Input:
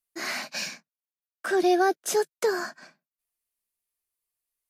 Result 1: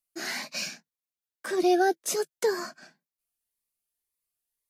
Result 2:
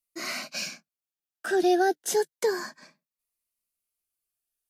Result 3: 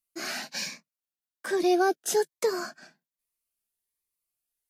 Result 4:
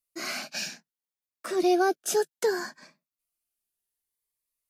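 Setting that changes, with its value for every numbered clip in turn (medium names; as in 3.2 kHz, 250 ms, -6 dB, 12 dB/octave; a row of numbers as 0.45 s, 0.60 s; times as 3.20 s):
Shepard-style phaser, rate: 1.9 Hz, 0.3 Hz, 1.2 Hz, 0.65 Hz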